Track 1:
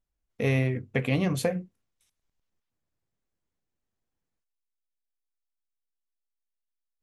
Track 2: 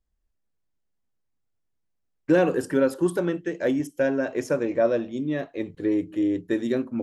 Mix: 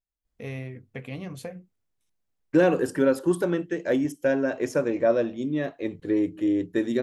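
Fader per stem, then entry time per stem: -10.5 dB, 0.0 dB; 0.00 s, 0.25 s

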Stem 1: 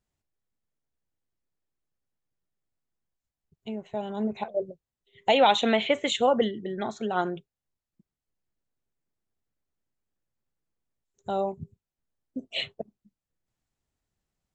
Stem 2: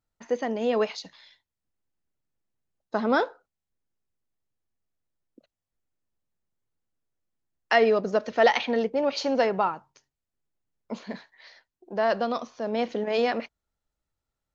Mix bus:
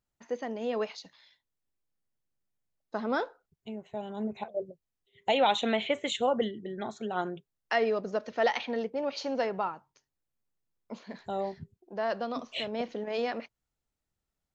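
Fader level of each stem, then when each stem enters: -5.0 dB, -7.0 dB; 0.00 s, 0.00 s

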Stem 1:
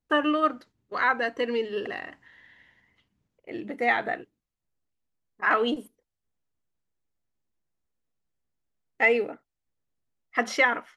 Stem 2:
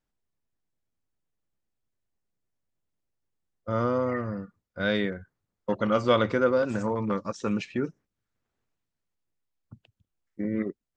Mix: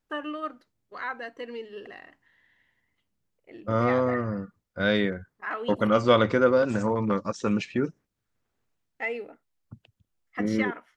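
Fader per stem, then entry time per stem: -10.0 dB, +2.5 dB; 0.00 s, 0.00 s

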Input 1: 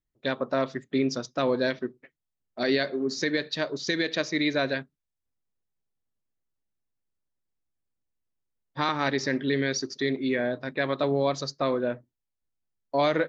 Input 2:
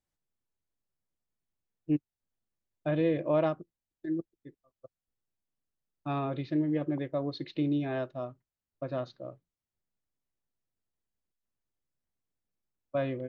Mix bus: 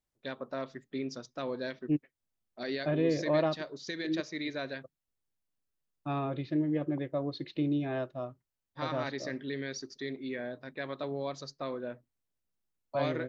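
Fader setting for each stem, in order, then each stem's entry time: -11.0 dB, -1.0 dB; 0.00 s, 0.00 s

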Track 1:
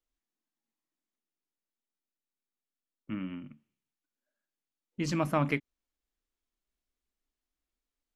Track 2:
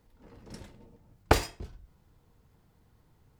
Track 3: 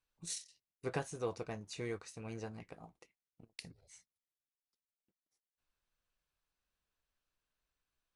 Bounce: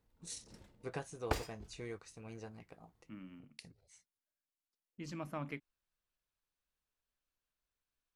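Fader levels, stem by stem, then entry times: -14.0 dB, -12.5 dB, -4.5 dB; 0.00 s, 0.00 s, 0.00 s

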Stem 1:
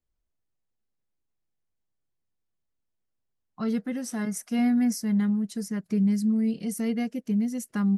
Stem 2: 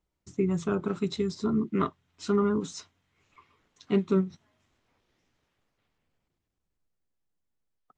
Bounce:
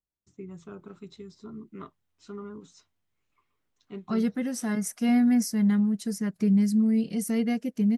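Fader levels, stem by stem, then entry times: +1.5 dB, -15.0 dB; 0.50 s, 0.00 s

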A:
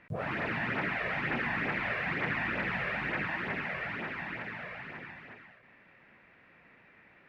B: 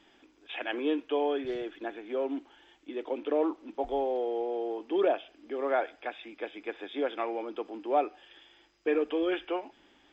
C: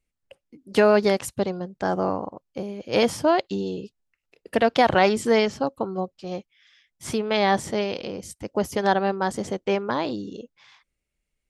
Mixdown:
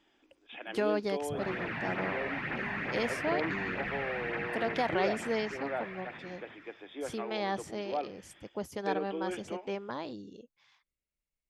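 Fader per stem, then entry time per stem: -3.5 dB, -8.0 dB, -13.0 dB; 1.20 s, 0.00 s, 0.00 s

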